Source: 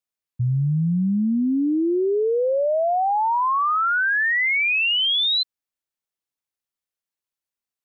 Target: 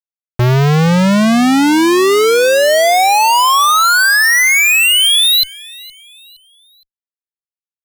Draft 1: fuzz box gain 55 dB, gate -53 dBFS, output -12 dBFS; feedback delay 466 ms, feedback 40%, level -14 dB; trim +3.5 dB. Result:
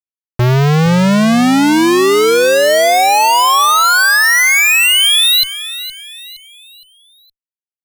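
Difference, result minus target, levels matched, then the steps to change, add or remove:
echo-to-direct +8.5 dB
change: feedback delay 466 ms, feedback 40%, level -22.5 dB

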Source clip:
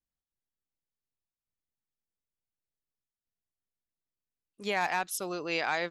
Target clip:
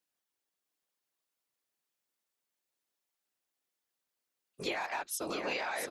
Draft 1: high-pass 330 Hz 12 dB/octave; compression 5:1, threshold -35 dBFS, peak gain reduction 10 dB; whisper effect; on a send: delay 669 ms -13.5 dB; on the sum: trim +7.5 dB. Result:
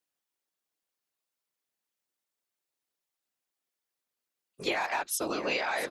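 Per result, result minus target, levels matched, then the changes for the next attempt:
compression: peak gain reduction -5.5 dB; echo-to-direct -7.5 dB
change: compression 5:1, threshold -42 dBFS, peak gain reduction 15.5 dB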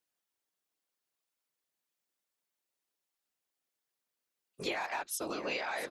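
echo-to-direct -7.5 dB
change: delay 669 ms -6 dB

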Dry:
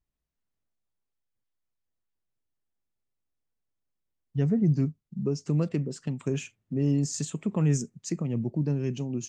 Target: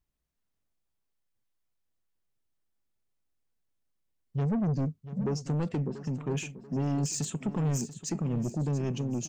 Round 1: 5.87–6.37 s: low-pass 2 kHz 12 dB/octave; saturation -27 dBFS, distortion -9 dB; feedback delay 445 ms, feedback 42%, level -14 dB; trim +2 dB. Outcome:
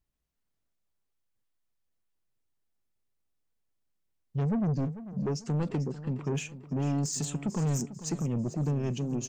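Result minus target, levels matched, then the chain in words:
echo 241 ms early
5.87–6.37 s: low-pass 2 kHz 12 dB/octave; saturation -27 dBFS, distortion -9 dB; feedback delay 686 ms, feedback 42%, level -14 dB; trim +2 dB

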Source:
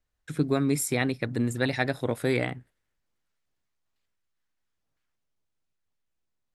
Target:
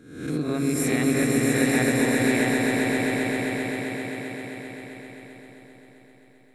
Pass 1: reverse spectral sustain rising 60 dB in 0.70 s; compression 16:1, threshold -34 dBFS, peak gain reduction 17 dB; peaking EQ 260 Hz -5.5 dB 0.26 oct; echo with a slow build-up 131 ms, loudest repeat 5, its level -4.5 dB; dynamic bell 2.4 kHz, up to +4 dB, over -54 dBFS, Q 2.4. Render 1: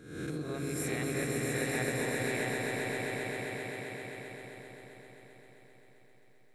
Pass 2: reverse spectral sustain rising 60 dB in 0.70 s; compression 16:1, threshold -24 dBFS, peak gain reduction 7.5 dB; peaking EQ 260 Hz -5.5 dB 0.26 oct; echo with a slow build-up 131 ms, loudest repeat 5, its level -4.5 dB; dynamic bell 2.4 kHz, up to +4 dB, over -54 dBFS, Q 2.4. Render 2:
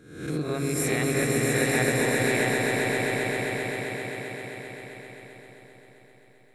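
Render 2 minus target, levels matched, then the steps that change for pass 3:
250 Hz band -4.5 dB
change: peaking EQ 260 Hz +5.5 dB 0.26 oct

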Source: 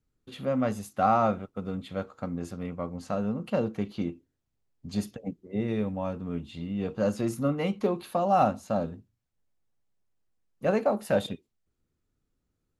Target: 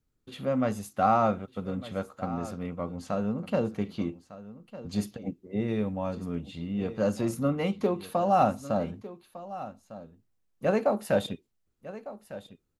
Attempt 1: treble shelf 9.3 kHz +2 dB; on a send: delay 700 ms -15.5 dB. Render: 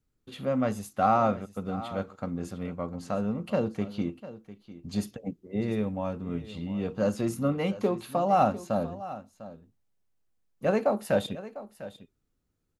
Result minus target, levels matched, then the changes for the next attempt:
echo 503 ms early
change: delay 1203 ms -15.5 dB

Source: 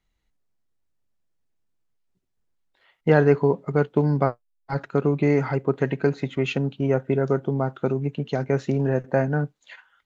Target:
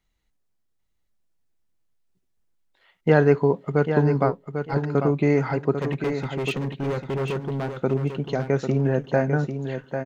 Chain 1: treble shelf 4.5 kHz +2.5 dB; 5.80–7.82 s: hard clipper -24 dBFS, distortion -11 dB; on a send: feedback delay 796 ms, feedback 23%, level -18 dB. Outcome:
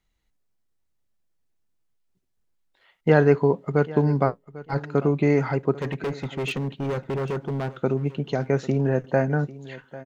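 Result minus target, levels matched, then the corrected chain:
echo-to-direct -10.5 dB
treble shelf 4.5 kHz +2.5 dB; 5.80–7.82 s: hard clipper -24 dBFS, distortion -11 dB; on a send: feedback delay 796 ms, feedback 23%, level -7.5 dB

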